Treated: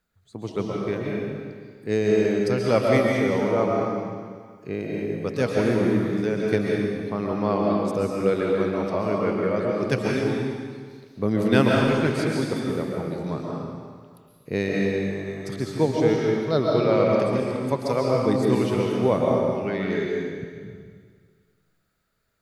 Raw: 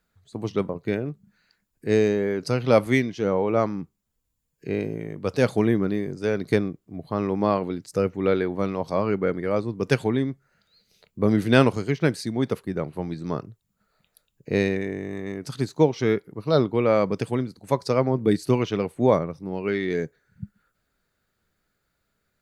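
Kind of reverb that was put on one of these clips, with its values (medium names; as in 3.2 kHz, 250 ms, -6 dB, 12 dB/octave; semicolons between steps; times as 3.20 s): algorithmic reverb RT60 1.8 s, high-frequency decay 1×, pre-delay 95 ms, DRR -2.5 dB; trim -3.5 dB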